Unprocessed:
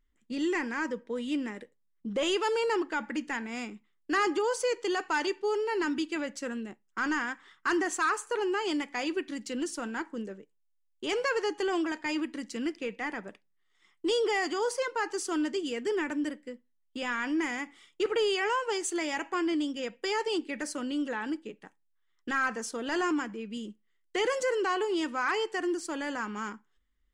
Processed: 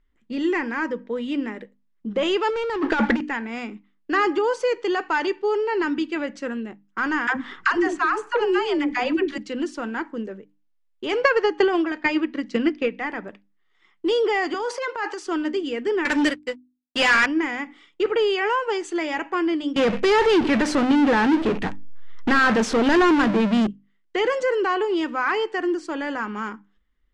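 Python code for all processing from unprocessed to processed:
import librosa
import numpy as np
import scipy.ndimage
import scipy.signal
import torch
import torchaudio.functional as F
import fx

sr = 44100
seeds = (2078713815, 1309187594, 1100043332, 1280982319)

y = fx.chain(x, sr, fx.leveller(passes=3),
    fx.over_compress(threshold_db=-27.0, ratio=-0.5), at=(2.5, 3.21))
y = fx.chain(y, sr, fx.low_shelf(hz=160.0, db=8.0),
    fx.dispersion(late='lows', ms=97.0, hz=420.0),
    fx.band_squash(depth_pct=100), at=(7.27, 9.38))
y = fx.chain(y, sr, fx.lowpass(hz=6600.0, slope=12),
    fx.notch(hz=940.0, q=18.0),
    fx.transient(attack_db=12, sustain_db=-1), at=(11.21, 12.97))
y = fx.chain(y, sr, fx.highpass(hz=510.0, slope=12),
    fx.transient(attack_db=-9, sustain_db=7), at=(14.54, 15.26))
y = fx.chain(y, sr, fx.tilt_eq(slope=4.0),
    fx.leveller(passes=5),
    fx.upward_expand(threshold_db=-40.0, expansion=2.5), at=(16.05, 17.26))
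y = fx.chain(y, sr, fx.low_shelf(hz=190.0, db=10.0),
    fx.power_curve(exponent=0.35), at=(19.76, 23.67))
y = scipy.signal.sosfilt(scipy.signal.bessel(2, 3000.0, 'lowpass', norm='mag', fs=sr, output='sos'), y)
y = fx.hum_notches(y, sr, base_hz=50, count=6)
y = y * 10.0 ** (7.0 / 20.0)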